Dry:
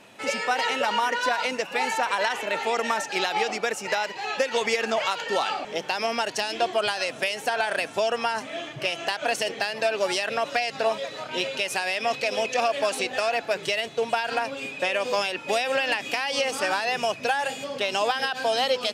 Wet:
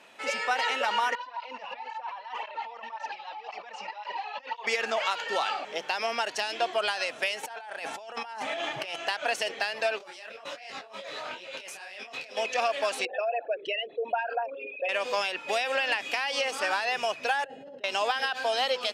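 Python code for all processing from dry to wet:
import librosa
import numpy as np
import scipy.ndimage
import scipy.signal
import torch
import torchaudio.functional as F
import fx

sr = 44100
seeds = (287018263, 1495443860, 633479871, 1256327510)

y = fx.chain(x, sr, fx.over_compress(threshold_db=-34.0, ratio=-1.0),
    fx.cabinet(low_hz=330.0, low_slope=12, high_hz=4300.0, hz=(380.0, 950.0, 1500.0, 2200.0, 3600.0), db=(-9, 9, -9, -5, -5)),
    fx.flanger_cancel(hz=1.9, depth_ms=3.4), at=(1.15, 4.67))
y = fx.chain(y, sr, fx.peak_eq(hz=830.0, db=11.5, octaves=0.23),
    fx.over_compress(threshold_db=-34.0, ratio=-1.0), at=(7.43, 8.96))
y = fx.chain(y, sr, fx.over_compress(threshold_db=-36.0, ratio=-1.0),
    fx.detune_double(cents=51), at=(9.98, 12.37))
y = fx.chain(y, sr, fx.envelope_sharpen(power=3.0),
    fx.lowpass(hz=2900.0, slope=6), at=(13.05, 14.89))
y = fx.chain(y, sr, fx.moving_average(points=38),
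    fx.over_compress(threshold_db=-40.0, ratio=-1.0), at=(17.44, 17.84))
y = fx.highpass(y, sr, hz=760.0, slope=6)
y = fx.high_shelf(y, sr, hz=4800.0, db=-7.5)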